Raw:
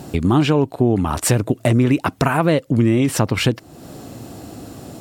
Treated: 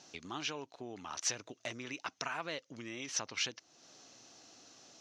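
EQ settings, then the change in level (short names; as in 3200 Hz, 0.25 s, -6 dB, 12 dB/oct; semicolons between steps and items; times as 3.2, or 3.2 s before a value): band-pass 6200 Hz, Q 8.8; air absorption 270 m; +16.0 dB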